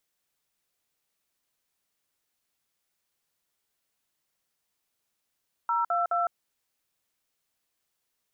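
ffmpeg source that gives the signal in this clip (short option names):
-f lavfi -i "aevalsrc='0.0501*clip(min(mod(t,0.211),0.158-mod(t,0.211))/0.002,0,1)*(eq(floor(t/0.211),0)*(sin(2*PI*941*mod(t,0.211))+sin(2*PI*1336*mod(t,0.211)))+eq(floor(t/0.211),1)*(sin(2*PI*697*mod(t,0.211))+sin(2*PI*1336*mod(t,0.211)))+eq(floor(t/0.211),2)*(sin(2*PI*697*mod(t,0.211))+sin(2*PI*1336*mod(t,0.211))))':d=0.633:s=44100"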